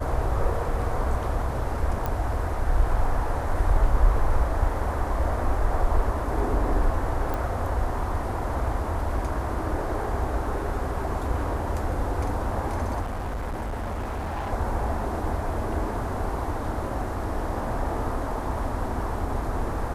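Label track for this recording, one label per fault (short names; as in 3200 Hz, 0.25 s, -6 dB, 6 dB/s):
2.060000	2.060000	pop -15 dBFS
7.340000	7.340000	pop
13.010000	14.510000	clipped -27 dBFS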